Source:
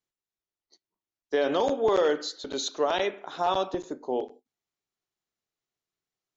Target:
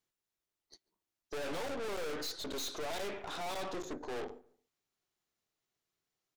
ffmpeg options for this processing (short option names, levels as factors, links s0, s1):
-filter_complex "[0:a]aeval=exprs='(tanh(141*val(0)+0.6)-tanh(0.6))/141':c=same,asplit=2[s0][s1];[s1]adelay=142,lowpass=f=1300:p=1,volume=0.0891,asplit=2[s2][s3];[s3]adelay=142,lowpass=f=1300:p=1,volume=0.31[s4];[s0][s2][s4]amix=inputs=3:normalize=0,volume=1.78"